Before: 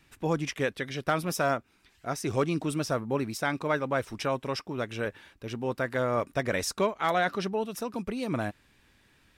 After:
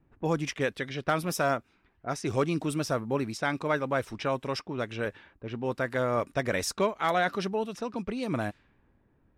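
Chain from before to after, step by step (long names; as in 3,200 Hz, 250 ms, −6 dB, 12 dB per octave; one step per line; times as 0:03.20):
low-pass that shuts in the quiet parts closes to 680 Hz, open at −27 dBFS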